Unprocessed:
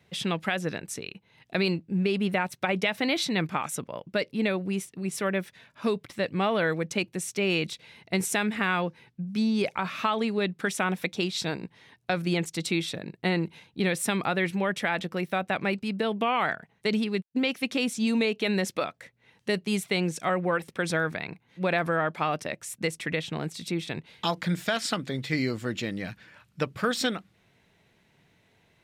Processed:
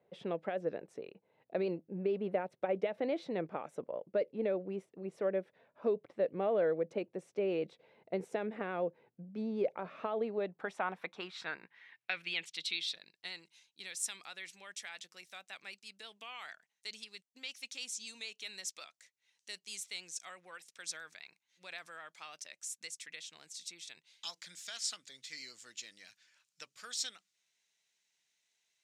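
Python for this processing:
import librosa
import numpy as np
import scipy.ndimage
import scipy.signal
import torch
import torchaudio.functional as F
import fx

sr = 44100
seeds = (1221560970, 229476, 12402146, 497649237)

y = fx.vibrato(x, sr, rate_hz=9.1, depth_cents=30.0)
y = fx.filter_sweep_bandpass(y, sr, from_hz=530.0, to_hz=6600.0, start_s=10.16, end_s=13.46, q=2.2)
y = fx.dynamic_eq(y, sr, hz=970.0, q=1.7, threshold_db=-44.0, ratio=4.0, max_db=-5)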